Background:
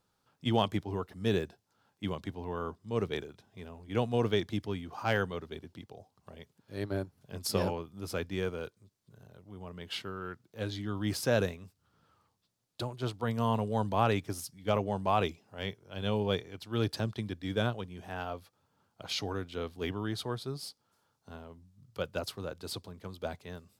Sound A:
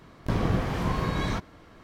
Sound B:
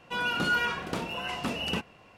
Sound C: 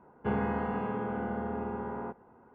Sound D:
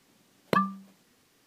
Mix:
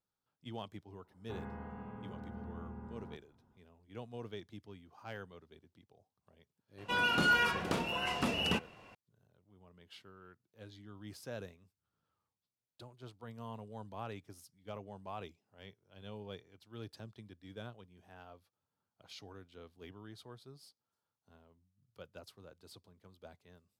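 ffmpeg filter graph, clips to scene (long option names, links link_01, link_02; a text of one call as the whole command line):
ffmpeg -i bed.wav -i cue0.wav -i cue1.wav -i cue2.wav -filter_complex "[0:a]volume=-16.5dB[link_01];[3:a]asubboost=boost=9.5:cutoff=180,atrim=end=2.54,asetpts=PTS-STARTPTS,volume=-15.5dB,afade=type=in:duration=0.004:curve=hsin,afade=type=out:start_time=2.536:duration=0.004:curve=hsin,adelay=1040[link_02];[2:a]atrim=end=2.17,asetpts=PTS-STARTPTS,volume=-1.5dB,afade=type=in:duration=0.004:curve=hsin,afade=type=out:start_time=2.166:duration=0.004:curve=hsin,adelay=6780[link_03];[link_01][link_02][link_03]amix=inputs=3:normalize=0" out.wav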